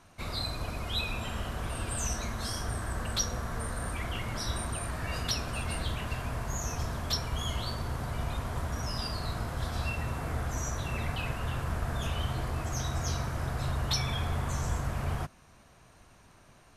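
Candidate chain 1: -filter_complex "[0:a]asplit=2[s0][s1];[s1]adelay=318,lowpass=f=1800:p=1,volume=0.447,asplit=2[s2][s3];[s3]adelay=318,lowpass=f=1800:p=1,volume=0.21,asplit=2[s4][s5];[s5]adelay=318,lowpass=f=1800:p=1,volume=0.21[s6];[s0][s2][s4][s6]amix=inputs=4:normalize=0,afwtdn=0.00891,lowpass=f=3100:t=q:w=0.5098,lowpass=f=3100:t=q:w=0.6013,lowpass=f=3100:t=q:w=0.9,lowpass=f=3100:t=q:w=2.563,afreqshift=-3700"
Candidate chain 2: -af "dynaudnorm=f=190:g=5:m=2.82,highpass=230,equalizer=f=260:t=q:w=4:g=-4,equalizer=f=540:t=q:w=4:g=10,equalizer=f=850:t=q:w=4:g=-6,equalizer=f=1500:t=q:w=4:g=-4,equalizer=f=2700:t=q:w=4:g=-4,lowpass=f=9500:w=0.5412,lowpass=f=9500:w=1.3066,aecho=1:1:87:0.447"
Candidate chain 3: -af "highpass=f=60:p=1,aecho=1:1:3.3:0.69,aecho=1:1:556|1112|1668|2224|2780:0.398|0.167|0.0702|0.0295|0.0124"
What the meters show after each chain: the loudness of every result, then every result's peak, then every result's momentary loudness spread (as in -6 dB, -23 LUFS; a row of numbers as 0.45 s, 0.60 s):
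-29.0 LUFS, -27.0 LUFS, -33.0 LUFS; -18.0 dBFS, -9.0 dBFS, -15.0 dBFS; 3 LU, 6 LU, 4 LU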